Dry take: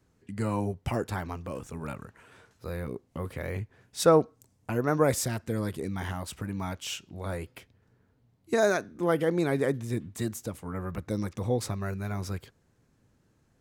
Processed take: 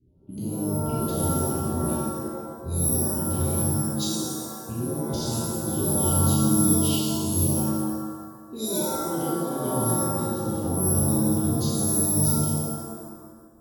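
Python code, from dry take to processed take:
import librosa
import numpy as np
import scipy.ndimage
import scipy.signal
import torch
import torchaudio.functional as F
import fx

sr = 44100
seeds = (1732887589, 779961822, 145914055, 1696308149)

y = scipy.signal.sosfilt(scipy.signal.ellip(3, 1.0, 40, [360.0, 3400.0], 'bandstop', fs=sr, output='sos'), x)
y = (np.kron(scipy.signal.resample_poly(y, 1, 4), np.eye(4)[0]) * 4)[:len(y)]
y = fx.over_compress(y, sr, threshold_db=-29.0, ratio=-1.0)
y = fx.env_lowpass(y, sr, base_hz=1000.0, full_db=-22.0)
y = fx.rev_shimmer(y, sr, seeds[0], rt60_s=1.4, semitones=7, shimmer_db=-2, drr_db=-7.0)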